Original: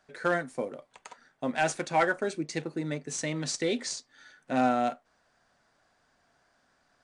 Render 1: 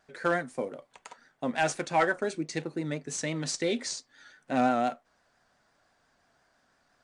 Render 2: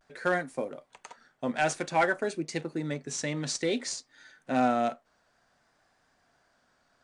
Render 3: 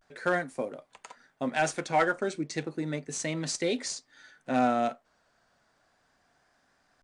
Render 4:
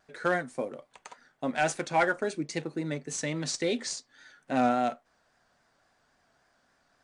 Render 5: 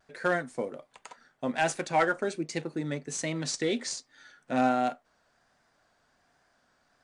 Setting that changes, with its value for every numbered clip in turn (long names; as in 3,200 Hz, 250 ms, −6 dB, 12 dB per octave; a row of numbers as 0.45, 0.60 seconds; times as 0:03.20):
pitch vibrato, speed: 5.8, 0.55, 0.34, 3.6, 1.3 Hertz